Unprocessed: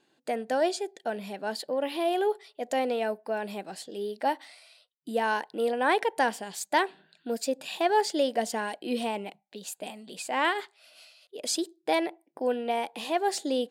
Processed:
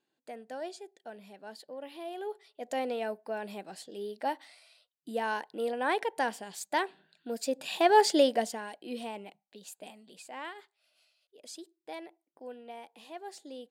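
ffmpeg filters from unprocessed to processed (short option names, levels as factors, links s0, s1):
-af "volume=1.58,afade=t=in:st=2.16:d=0.62:silence=0.375837,afade=t=in:st=7.34:d=0.8:silence=0.354813,afade=t=out:st=8.14:d=0.44:silence=0.237137,afade=t=out:st=9.86:d=0.64:silence=0.398107"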